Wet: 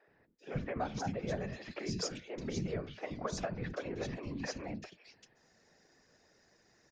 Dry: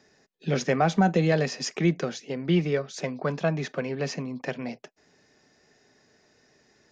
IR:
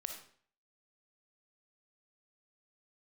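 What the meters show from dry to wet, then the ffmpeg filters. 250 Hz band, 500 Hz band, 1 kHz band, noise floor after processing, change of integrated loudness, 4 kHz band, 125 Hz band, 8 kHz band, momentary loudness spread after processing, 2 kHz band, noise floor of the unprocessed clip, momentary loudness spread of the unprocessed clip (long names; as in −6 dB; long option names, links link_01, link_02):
−13.5 dB, −12.5 dB, −12.5 dB, −70 dBFS, −12.5 dB, −9.5 dB, −13.5 dB, can't be measured, 7 LU, −12.5 dB, −64 dBFS, 12 LU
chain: -filter_complex "[0:a]bandreject=frequency=292.9:width_type=h:width=4,bandreject=frequency=585.8:width_type=h:width=4,bandreject=frequency=878.7:width_type=h:width=4,bandreject=frequency=1171.6:width_type=h:width=4,bandreject=frequency=1464.5:width_type=h:width=4,bandreject=frequency=1757.4:width_type=h:width=4,bandreject=frequency=2050.3:width_type=h:width=4,bandreject=frequency=2343.2:width_type=h:width=4,bandreject=frequency=2636.1:width_type=h:width=4,bandreject=frequency=2929:width_type=h:width=4,bandreject=frequency=3221.9:width_type=h:width=4,bandreject=frequency=3514.8:width_type=h:width=4,bandreject=frequency=3807.7:width_type=h:width=4,bandreject=frequency=4100.6:width_type=h:width=4,bandreject=frequency=4393.5:width_type=h:width=4,bandreject=frequency=4686.4:width_type=h:width=4,acompressor=threshold=-29dB:ratio=6,afftfilt=real='hypot(re,im)*cos(2*PI*random(0))':imag='hypot(re,im)*sin(2*PI*random(1))':win_size=512:overlap=0.75,acrossover=split=320|2800[link_01][link_02][link_03];[link_01]adelay=80[link_04];[link_03]adelay=390[link_05];[link_04][link_02][link_05]amix=inputs=3:normalize=0,volume=2dB"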